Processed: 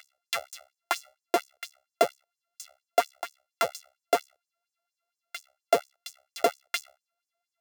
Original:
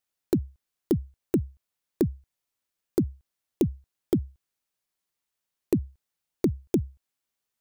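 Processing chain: sorted samples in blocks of 64 samples; reverse echo 381 ms -10 dB; LFO high-pass sine 4.3 Hz 460–6900 Hz; trim -2.5 dB

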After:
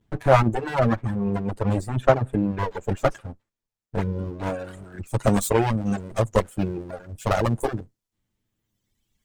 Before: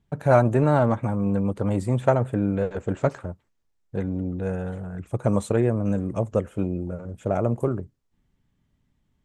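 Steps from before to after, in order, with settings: comb filter that takes the minimum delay 9.2 ms; reverb removal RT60 1.9 s; treble shelf 3.3 kHz -3.5 dB, from 2.68 s +2.5 dB, from 4.64 s +10 dB; trim +5 dB

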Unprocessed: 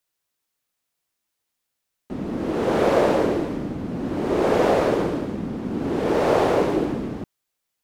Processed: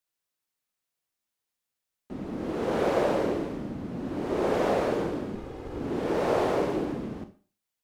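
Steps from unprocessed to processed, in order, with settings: 5.35–5.79 s: comb filter that takes the minimum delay 2.4 ms; Schroeder reverb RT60 0.37 s, combs from 30 ms, DRR 9 dB; trim -7 dB

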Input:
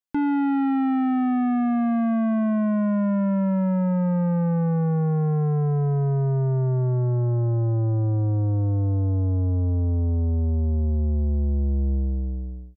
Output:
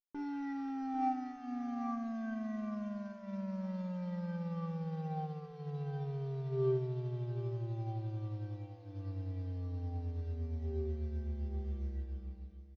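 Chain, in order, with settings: CVSD coder 32 kbps; distance through air 180 m; hum notches 50/100/150/200/250/300/350/400 Hz; feedback comb 390 Hz, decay 0.34 s, harmonics all, mix 90%; delay 795 ms -11 dB; upward expansion 1.5:1, over -48 dBFS; trim +4.5 dB

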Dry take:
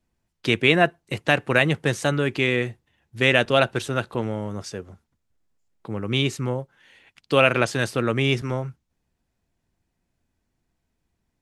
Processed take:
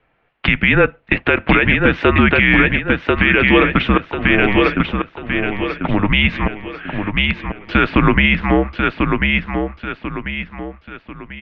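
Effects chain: compression, threshold -21 dBFS, peak gain reduction 10 dB; dynamic bell 1.2 kHz, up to -6 dB, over -42 dBFS, Q 1.2; 6.47–7.69 s: inverted gate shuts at -30 dBFS, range -34 dB; mistuned SSB -200 Hz 170–3000 Hz; bass shelf 270 Hz -9.5 dB; 3.87–4.77 s: slow attack 224 ms; feedback delay 1042 ms, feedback 38%, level -6 dB; loudness maximiser +23.5 dB; trim -1 dB

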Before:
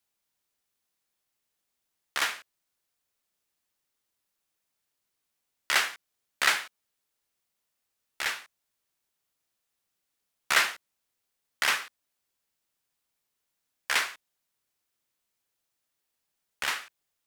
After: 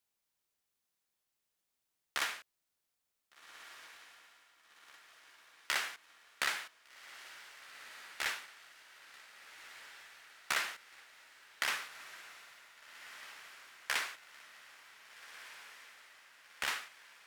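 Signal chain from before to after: compression, threshold -26 dBFS, peak gain reduction 9 dB; echo that smears into a reverb 1567 ms, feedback 62%, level -13 dB; trim -4 dB

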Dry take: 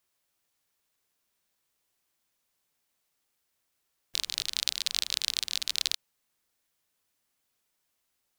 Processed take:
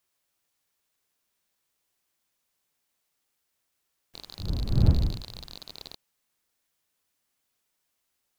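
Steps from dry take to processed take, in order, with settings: 4.38–5.55 s: wind noise 99 Hz -28 dBFS; slew-rate limiter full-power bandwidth 130 Hz

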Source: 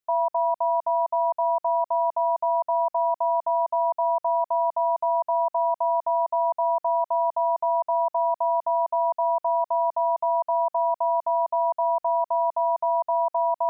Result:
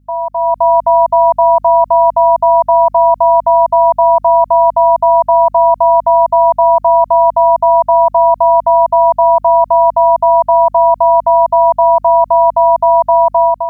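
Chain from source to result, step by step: hum 50 Hz, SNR 31 dB; level rider gain up to 11 dB; trim +4 dB

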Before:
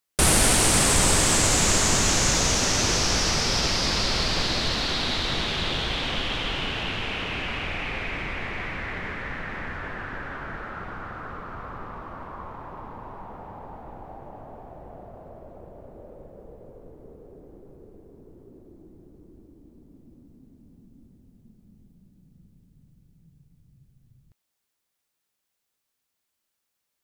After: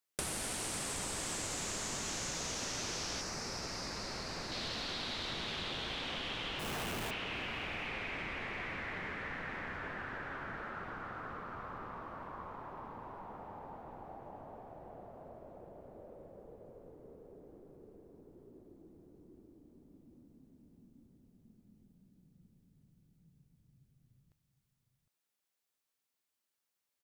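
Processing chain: bass shelf 87 Hz -10 dB; 6.59–7.11 s: Schmitt trigger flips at -32.5 dBFS; echo from a far wall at 130 m, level -12 dB; compression 10:1, threshold -29 dBFS, peak gain reduction 13 dB; 3.21–4.52 s: peaking EQ 3.3 kHz -12 dB 0.6 oct; trim -7 dB

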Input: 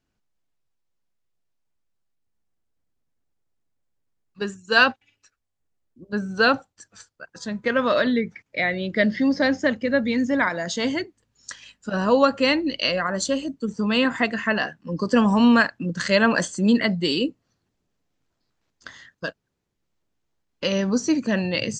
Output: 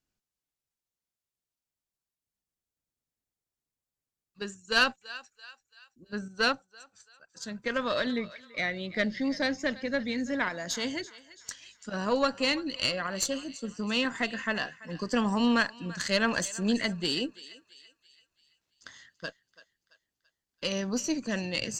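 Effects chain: treble shelf 3.9 kHz +11 dB; thinning echo 335 ms, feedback 47%, high-pass 830 Hz, level -16 dB; valve stage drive 5 dB, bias 0.65; 6.28–7.37 s: upward expansion 1.5:1, over -33 dBFS; trim -6.5 dB

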